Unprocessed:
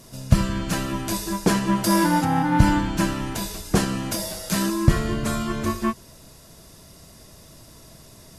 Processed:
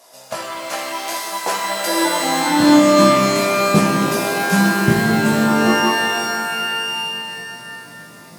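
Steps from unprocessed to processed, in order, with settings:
chorus effect 0.66 Hz, delay 16 ms, depth 2.7 ms
high-pass filter sweep 700 Hz → 180 Hz, 0:01.62–0:03.28
reverb with rising layers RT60 2.8 s, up +12 semitones, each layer −2 dB, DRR 3.5 dB
level +3 dB

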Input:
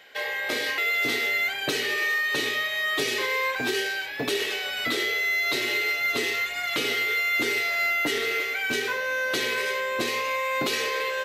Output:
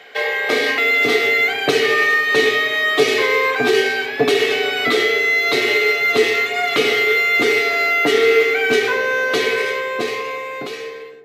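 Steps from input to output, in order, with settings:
fade-out on the ending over 2.22 s
high-pass filter 99 Hz 24 dB per octave
high-shelf EQ 7,000 Hz −10 dB
hollow resonant body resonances 440/720/1,200/2,200 Hz, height 12 dB, ringing for 95 ms
convolution reverb RT60 2.2 s, pre-delay 4 ms, DRR 12.5 dB
level +8.5 dB

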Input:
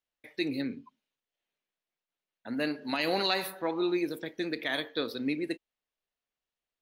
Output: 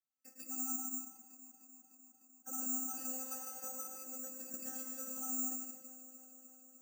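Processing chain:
in parallel at −1 dB: brickwall limiter −25 dBFS, peak gain reduction 8.5 dB
on the sum: downward compressor 5 to 1, threshold −34 dBFS, peak gain reduction 12 dB
channel vocoder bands 32, saw 260 Hz
hard clipping −35.5 dBFS, distortion −8 dB
resonances in every octave E, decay 0.11 s
delay that swaps between a low-pass and a high-pass 151 ms, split 1,200 Hz, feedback 86%, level −13.5 dB
convolution reverb RT60 0.90 s, pre-delay 100 ms, DRR 0.5 dB
bad sample-rate conversion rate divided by 6×, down filtered, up zero stuff
level +8 dB

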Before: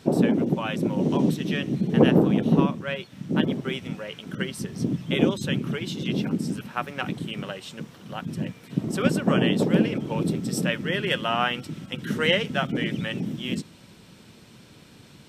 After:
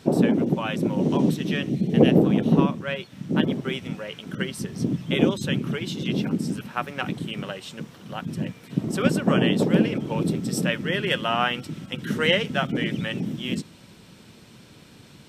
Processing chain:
0:01.70–0:02.25: flat-topped bell 1,200 Hz −8.5 dB 1.1 octaves
level +1 dB

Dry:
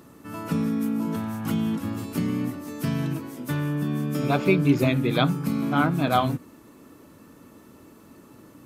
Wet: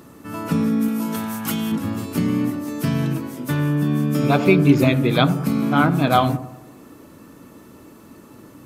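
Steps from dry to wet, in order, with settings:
0:00.88–0:01.72: spectral tilt +2.5 dB per octave
delay with a low-pass on its return 95 ms, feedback 50%, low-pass 980 Hz, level −13 dB
level +5 dB

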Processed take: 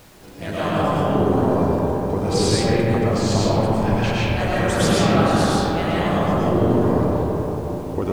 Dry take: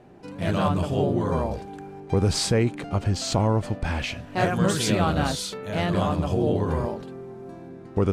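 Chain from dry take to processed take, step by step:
harmonic and percussive parts rebalanced harmonic −9 dB
comb and all-pass reverb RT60 4.6 s, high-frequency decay 0.25×, pre-delay 70 ms, DRR −8.5 dB
background noise pink −48 dBFS

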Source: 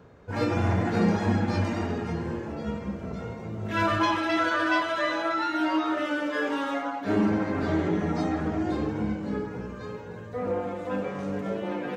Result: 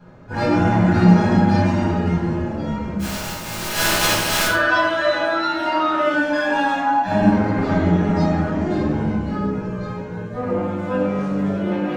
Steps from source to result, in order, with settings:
0:02.99–0:04.46: compressing power law on the bin magnitudes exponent 0.2
0:06.13–0:07.31: comb filter 1.2 ms, depth 73%
rectangular room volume 720 cubic metres, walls furnished, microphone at 8.4 metres
level −4 dB

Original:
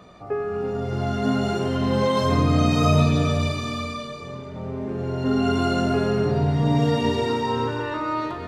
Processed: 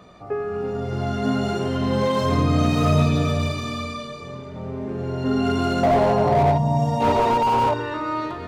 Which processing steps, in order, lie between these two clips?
0:05.83–0:07.74: flat-topped bell 760 Hz +15.5 dB 1.1 octaves
0:06.58–0:07.01: gain on a spectral selection 240–4,700 Hz −11 dB
slew-rate limiting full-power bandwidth 120 Hz

